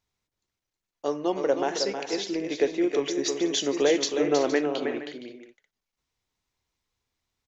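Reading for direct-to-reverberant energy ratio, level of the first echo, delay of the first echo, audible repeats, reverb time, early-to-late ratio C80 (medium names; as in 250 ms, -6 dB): no reverb, -7.0 dB, 317 ms, 4, no reverb, no reverb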